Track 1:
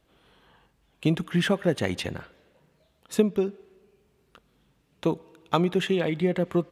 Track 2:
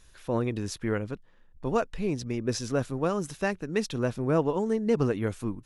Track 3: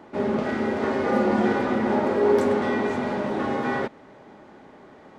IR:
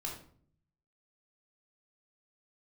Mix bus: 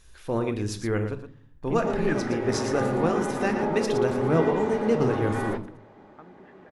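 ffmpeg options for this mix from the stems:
-filter_complex "[0:a]lowpass=f=1.7k:t=q:w=3,adelay=650,volume=-8dB[a];[1:a]volume=-2dB,asplit=4[b][c][d][e];[c]volume=-3.5dB[f];[d]volume=-6dB[g];[2:a]adelay=1700,volume=-5dB,asplit=2[h][i];[i]volume=-9.5dB[j];[e]apad=whole_len=324633[k];[a][k]sidechaingate=range=-21dB:threshold=-49dB:ratio=16:detection=peak[l];[l][h]amix=inputs=2:normalize=0,highshelf=f=3.8k:g=-11.5,alimiter=limit=-19.5dB:level=0:latency=1:release=373,volume=0dB[m];[3:a]atrim=start_sample=2205[n];[f][j]amix=inputs=2:normalize=0[o];[o][n]afir=irnorm=-1:irlink=0[p];[g]aecho=0:1:116:1[q];[b][m][p][q]amix=inputs=4:normalize=0"

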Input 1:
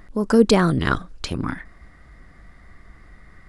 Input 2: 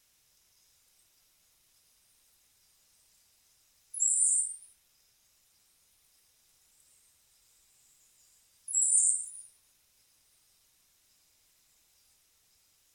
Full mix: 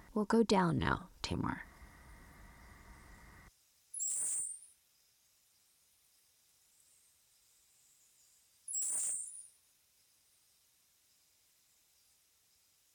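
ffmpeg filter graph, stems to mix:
-filter_complex "[0:a]equalizer=f=930:w=7:g=12,volume=-8.5dB[a];[1:a]asoftclip=type=tanh:threshold=-29.5dB,volume=-3.5dB[b];[a][b]amix=inputs=2:normalize=0,highpass=49,acompressor=threshold=-37dB:ratio=1.5"

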